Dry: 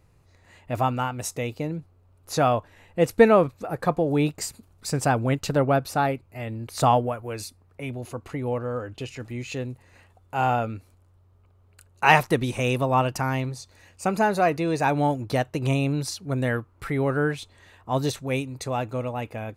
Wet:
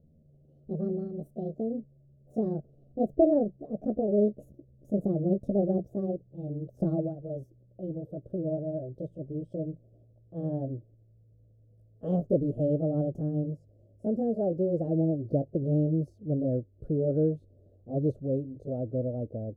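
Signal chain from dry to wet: pitch bend over the whole clip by +7.5 st ending unshifted; elliptic low-pass 600 Hz, stop band 40 dB

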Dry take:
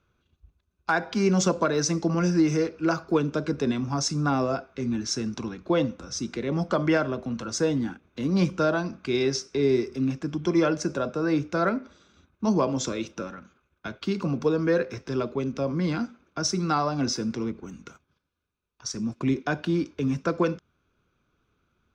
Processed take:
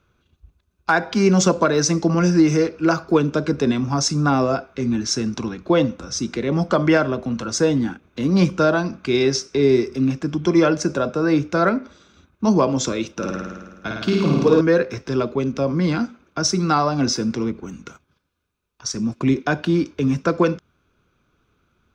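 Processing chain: 13.17–14.61 s: flutter echo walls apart 9.2 m, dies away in 1.3 s; trim +6.5 dB

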